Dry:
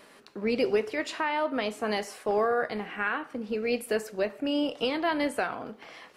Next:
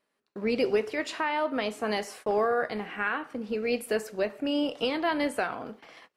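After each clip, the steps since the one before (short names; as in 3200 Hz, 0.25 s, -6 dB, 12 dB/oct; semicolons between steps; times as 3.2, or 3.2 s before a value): gate -46 dBFS, range -25 dB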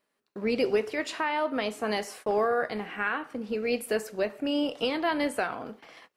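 high shelf 9500 Hz +3.5 dB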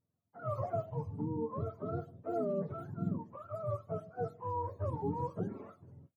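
spectrum mirrored in octaves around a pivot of 530 Hz; bands offset in time lows, highs 50 ms, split 2600 Hz; gain -8 dB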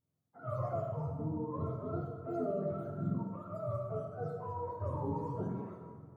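plate-style reverb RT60 1.7 s, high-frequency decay 0.55×, DRR -1 dB; gain -4 dB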